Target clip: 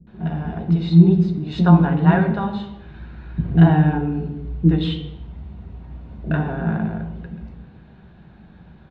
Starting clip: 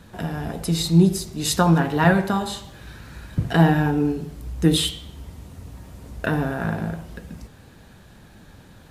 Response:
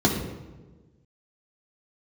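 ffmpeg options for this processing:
-filter_complex "[0:a]lowpass=f=3.3k:w=0.5412,lowpass=f=3.3k:w=1.3066,acrossover=split=370[a][b];[b]adelay=70[c];[a][c]amix=inputs=2:normalize=0,asplit=2[d][e];[1:a]atrim=start_sample=2205,afade=t=out:st=0.42:d=0.01,atrim=end_sample=18963[f];[e][f]afir=irnorm=-1:irlink=0,volume=-20dB[g];[d][g]amix=inputs=2:normalize=0,volume=-4.5dB"

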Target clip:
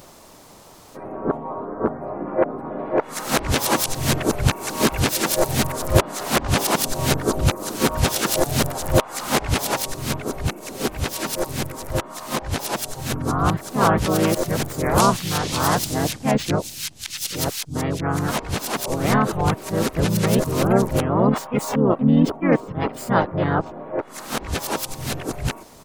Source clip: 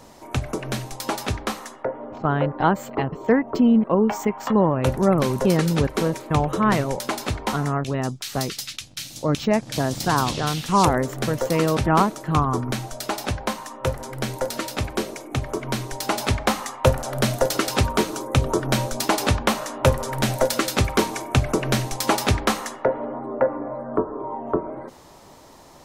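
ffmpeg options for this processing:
-filter_complex "[0:a]areverse,asplit=4[a][b][c][d];[b]asetrate=29433,aresample=44100,atempo=1.49831,volume=-3dB[e];[c]asetrate=37084,aresample=44100,atempo=1.18921,volume=-18dB[f];[d]asetrate=52444,aresample=44100,atempo=0.840896,volume=-3dB[g];[a][e][f][g]amix=inputs=4:normalize=0,crystalizer=i=1:c=0,volume=-2.5dB"

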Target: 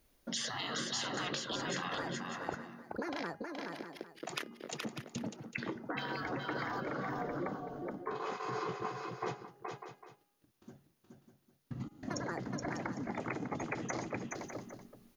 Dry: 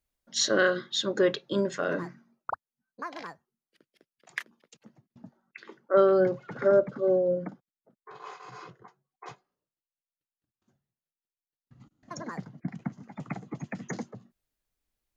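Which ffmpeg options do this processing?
-af "afftfilt=real='re*lt(hypot(re,im),0.0562)':imag='im*lt(hypot(re,im),0.0562)':win_size=1024:overlap=0.75,equalizer=f=330:t=o:w=1.7:g=7,bandreject=f=7.8k:w=5.2,bandreject=f=410.4:t=h:w=4,bandreject=f=820.8:t=h:w=4,bandreject=f=1.2312k:t=h:w=4,bandreject=f=1.6416k:t=h:w=4,bandreject=f=2.052k:t=h:w=4,bandreject=f=2.4624k:t=h:w=4,bandreject=f=2.8728k:t=h:w=4,acompressor=threshold=-51dB:ratio=5,aecho=1:1:423|598|803:0.631|0.316|0.15,volume=13.5dB"

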